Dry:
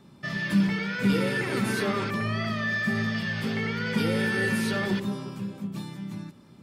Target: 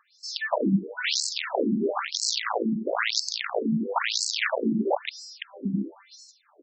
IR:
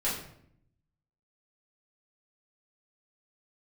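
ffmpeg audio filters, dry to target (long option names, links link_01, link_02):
-filter_complex "[0:a]asettb=1/sr,asplit=3[link_01][link_02][link_03];[link_01]atrim=end=1.954[link_04];[link_02]atrim=start=1.95:end=3.2,asetpts=PTS-STARTPTS,afade=type=in:duration=0.004:curve=qsin,afade=type=out:start_time=1.246:duration=0.004:curve=qsin,aeval=exprs='val(0)+0.5*0.00794*sgn(val(0))':channel_layout=same[link_05];[link_03]atrim=start=3.196[link_06];[link_04][link_05]acrossfade=duration=0.004:curve1=hsin:curve2=qsin[link_07];[link_07][link_06]acrossfade=duration=0.004:curve1=qsin:curve2=hsin,aemphasis=mode=reproduction:type=riaa,asplit=2[link_08][link_09];[link_09]acompressor=threshold=-23dB:ratio=6,volume=-1dB[link_10];[link_08][link_10]amix=inputs=2:normalize=0,aexciter=amount=7.7:drive=8.9:freq=4800,asplit=2[link_11][link_12];[link_12]aecho=0:1:244:0.141[link_13];[link_11][link_13]amix=inputs=2:normalize=0,aeval=exprs='(mod(3.35*val(0)+1,2)-1)/3.35':channel_layout=same,afftfilt=real='re*between(b*sr/1024,240*pow(5900/240,0.5+0.5*sin(2*PI*1*pts/sr))/1.41,240*pow(5900/240,0.5+0.5*sin(2*PI*1*pts/sr))*1.41)':imag='im*between(b*sr/1024,240*pow(5900/240,0.5+0.5*sin(2*PI*1*pts/sr))/1.41,240*pow(5900/240,0.5+0.5*sin(2*PI*1*pts/sr))*1.41)':win_size=1024:overlap=0.75"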